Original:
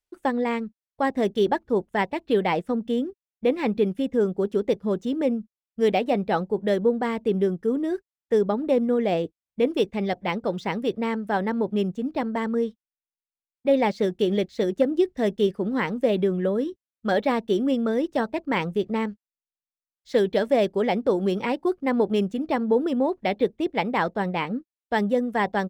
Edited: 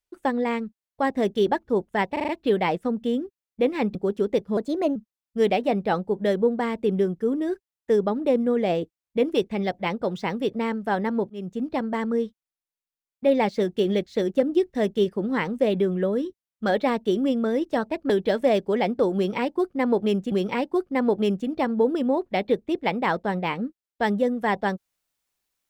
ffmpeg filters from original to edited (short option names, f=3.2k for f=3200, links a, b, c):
-filter_complex "[0:a]asplit=11[a][b][c][d][e][f][g][h][i][j][k];[a]atrim=end=2.162[l];[b]atrim=start=2.118:end=2.162[m];[c]atrim=start=2.118:end=2.162[n];[d]atrim=start=2.118:end=2.162[o];[e]atrim=start=2.118:end=3.792[p];[f]atrim=start=4.298:end=4.924[q];[g]atrim=start=4.92:end=5.38,asetpts=PTS-STARTPTS,asetrate=52479,aresample=44100,atrim=end_sample=17047,asetpts=PTS-STARTPTS[r];[h]atrim=start=5.376:end=11.72,asetpts=PTS-STARTPTS,afade=t=out:st=6.34:d=0.004:c=hsin[s];[i]atrim=start=11.72:end=18.522,asetpts=PTS-STARTPTS,afade=t=in:d=0.29[t];[j]atrim=start=20.168:end=22.392[u];[k]atrim=start=21.228[v];[l][m]acrossfade=d=0.004:c1=hsin:c2=hsin[w];[w][n]acrossfade=d=0.004:c1=hsin:c2=hsin[x];[x][o]acrossfade=d=0.004:c1=hsin:c2=hsin[y];[y][p]acrossfade=d=0.004:c1=hsin:c2=hsin[z];[z][q]acrossfade=d=0.004:c1=hsin:c2=hsin[aa];[aa][r]acrossfade=d=0.004:c1=hsin:c2=hsin[ab];[s][t]concat=n=2:v=0:a=1[ac];[ab][ac]acrossfade=d=0.004:c1=hsin:c2=hsin[ad];[ad][u]acrossfade=d=0.004:c1=hsin:c2=hsin[ae];[ae][v]acrossfade=d=0.004:c1=hsin:c2=hsin"